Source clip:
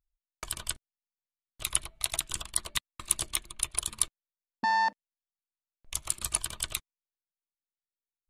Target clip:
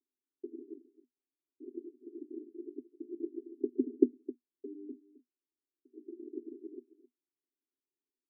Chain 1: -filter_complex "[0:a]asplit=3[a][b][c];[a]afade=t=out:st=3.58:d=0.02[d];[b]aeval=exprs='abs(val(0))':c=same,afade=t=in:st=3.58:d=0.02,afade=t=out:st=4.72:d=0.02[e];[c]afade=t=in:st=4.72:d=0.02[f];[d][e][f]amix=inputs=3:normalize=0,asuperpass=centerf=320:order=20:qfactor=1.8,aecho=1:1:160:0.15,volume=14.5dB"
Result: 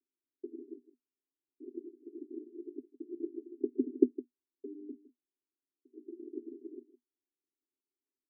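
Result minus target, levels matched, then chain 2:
echo 0.103 s early
-filter_complex "[0:a]asplit=3[a][b][c];[a]afade=t=out:st=3.58:d=0.02[d];[b]aeval=exprs='abs(val(0))':c=same,afade=t=in:st=3.58:d=0.02,afade=t=out:st=4.72:d=0.02[e];[c]afade=t=in:st=4.72:d=0.02[f];[d][e][f]amix=inputs=3:normalize=0,asuperpass=centerf=320:order=20:qfactor=1.8,aecho=1:1:263:0.15,volume=14.5dB"

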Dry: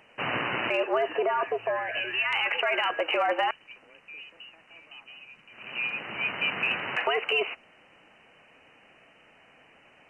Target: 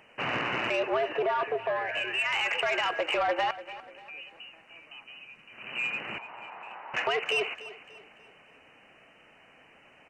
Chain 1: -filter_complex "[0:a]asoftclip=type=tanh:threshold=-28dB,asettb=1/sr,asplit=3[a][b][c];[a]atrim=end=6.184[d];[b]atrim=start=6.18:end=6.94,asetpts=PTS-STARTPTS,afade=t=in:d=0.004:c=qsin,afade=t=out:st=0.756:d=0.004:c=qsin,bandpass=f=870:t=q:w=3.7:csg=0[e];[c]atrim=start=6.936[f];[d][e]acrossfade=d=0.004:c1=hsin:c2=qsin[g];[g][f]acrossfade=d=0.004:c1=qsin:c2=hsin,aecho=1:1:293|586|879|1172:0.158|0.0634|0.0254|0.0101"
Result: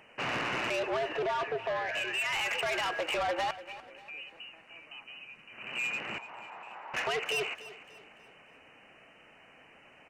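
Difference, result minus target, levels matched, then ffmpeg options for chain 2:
soft clip: distortion +9 dB
-filter_complex "[0:a]asoftclip=type=tanh:threshold=-20.5dB,asettb=1/sr,asplit=3[a][b][c];[a]atrim=end=6.184[d];[b]atrim=start=6.18:end=6.94,asetpts=PTS-STARTPTS,afade=t=in:d=0.004:c=qsin,afade=t=out:st=0.756:d=0.004:c=qsin,bandpass=f=870:t=q:w=3.7:csg=0[e];[c]atrim=start=6.936[f];[d][e]acrossfade=d=0.004:c1=hsin:c2=qsin[g];[g][f]acrossfade=d=0.004:c1=qsin:c2=hsin,aecho=1:1:293|586|879|1172:0.158|0.0634|0.0254|0.0101"

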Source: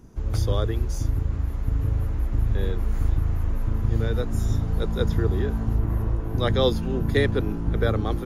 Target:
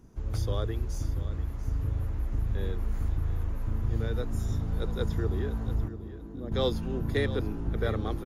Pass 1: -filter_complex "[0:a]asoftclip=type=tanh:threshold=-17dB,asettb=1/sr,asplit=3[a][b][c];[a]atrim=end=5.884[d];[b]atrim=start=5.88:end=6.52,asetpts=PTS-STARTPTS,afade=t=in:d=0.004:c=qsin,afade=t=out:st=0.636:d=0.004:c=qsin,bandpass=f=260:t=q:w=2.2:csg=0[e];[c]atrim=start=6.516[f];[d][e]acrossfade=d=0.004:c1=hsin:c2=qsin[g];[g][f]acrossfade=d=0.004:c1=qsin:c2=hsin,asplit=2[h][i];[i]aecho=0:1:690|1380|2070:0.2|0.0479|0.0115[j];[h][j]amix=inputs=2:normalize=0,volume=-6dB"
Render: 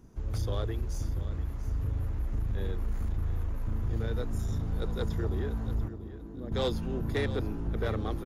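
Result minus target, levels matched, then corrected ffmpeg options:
soft clip: distortion +12 dB
-filter_complex "[0:a]asoftclip=type=tanh:threshold=-8.5dB,asettb=1/sr,asplit=3[a][b][c];[a]atrim=end=5.884[d];[b]atrim=start=5.88:end=6.52,asetpts=PTS-STARTPTS,afade=t=in:d=0.004:c=qsin,afade=t=out:st=0.636:d=0.004:c=qsin,bandpass=f=260:t=q:w=2.2:csg=0[e];[c]atrim=start=6.516[f];[d][e]acrossfade=d=0.004:c1=hsin:c2=qsin[g];[g][f]acrossfade=d=0.004:c1=qsin:c2=hsin,asplit=2[h][i];[i]aecho=0:1:690|1380|2070:0.2|0.0479|0.0115[j];[h][j]amix=inputs=2:normalize=0,volume=-6dB"

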